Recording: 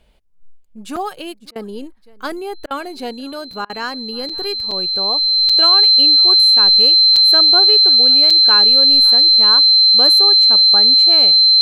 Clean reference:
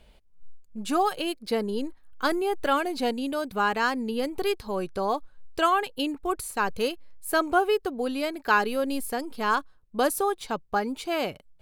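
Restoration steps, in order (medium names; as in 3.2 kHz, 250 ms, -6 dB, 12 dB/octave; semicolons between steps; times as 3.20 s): band-stop 4.1 kHz, Q 30; interpolate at 0.96/3.53/4.29/4.71/5.49/7.16/8.30 s, 5.3 ms; interpolate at 1.51/2.66/3.65 s, 45 ms; inverse comb 550 ms -23.5 dB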